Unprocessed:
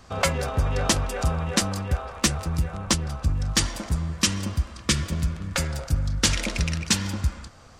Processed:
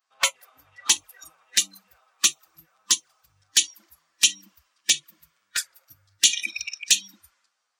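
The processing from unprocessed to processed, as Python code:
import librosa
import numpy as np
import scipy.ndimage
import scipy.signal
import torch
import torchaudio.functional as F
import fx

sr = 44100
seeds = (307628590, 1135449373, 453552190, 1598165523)

y = scipy.signal.sosfilt(scipy.signal.butter(2, 1100.0, 'highpass', fs=sr, output='sos'), x)
y = fx.rev_schroeder(y, sr, rt60_s=2.2, comb_ms=27, drr_db=18.0)
y = fx.noise_reduce_blind(y, sr, reduce_db=28)
y = fx.env_flanger(y, sr, rest_ms=11.7, full_db=-25.5)
y = y * librosa.db_to_amplitude(8.0)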